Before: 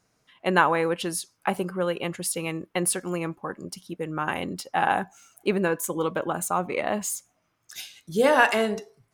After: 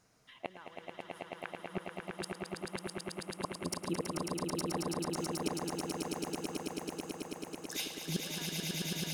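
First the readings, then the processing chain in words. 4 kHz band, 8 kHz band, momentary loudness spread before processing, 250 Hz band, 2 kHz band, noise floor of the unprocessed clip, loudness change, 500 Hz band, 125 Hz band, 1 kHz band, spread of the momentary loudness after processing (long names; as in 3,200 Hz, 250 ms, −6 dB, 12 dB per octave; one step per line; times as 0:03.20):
−4.5 dB, −10.0 dB, 15 LU, −8.5 dB, −17.5 dB, −72 dBFS, −13.0 dB, −15.0 dB, −7.5 dB, −17.0 dB, 10 LU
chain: gate with flip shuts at −23 dBFS, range −35 dB
echo that builds up and dies away 109 ms, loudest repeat 8, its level −4 dB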